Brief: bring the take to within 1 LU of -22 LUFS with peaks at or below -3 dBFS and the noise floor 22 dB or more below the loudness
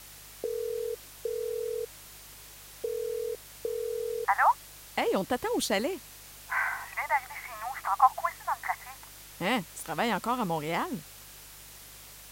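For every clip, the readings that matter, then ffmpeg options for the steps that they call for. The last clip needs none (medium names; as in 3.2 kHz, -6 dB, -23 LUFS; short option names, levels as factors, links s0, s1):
hum 50 Hz; highest harmonic 150 Hz; hum level -56 dBFS; noise floor -49 dBFS; noise floor target -53 dBFS; loudness -31.0 LUFS; peak level -8.5 dBFS; loudness target -22.0 LUFS
-> -af "bandreject=f=50:t=h:w=4,bandreject=f=100:t=h:w=4,bandreject=f=150:t=h:w=4"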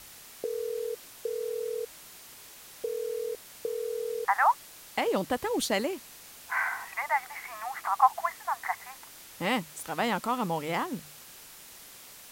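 hum not found; noise floor -50 dBFS; noise floor target -53 dBFS
-> -af "afftdn=nr=6:nf=-50"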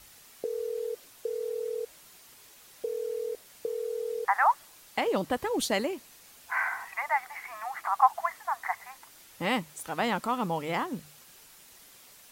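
noise floor -55 dBFS; loudness -31.0 LUFS; peak level -8.5 dBFS; loudness target -22.0 LUFS
-> -af "volume=2.82,alimiter=limit=0.708:level=0:latency=1"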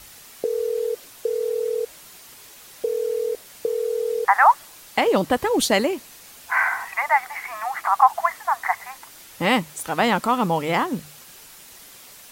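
loudness -22.5 LUFS; peak level -3.0 dBFS; noise floor -46 dBFS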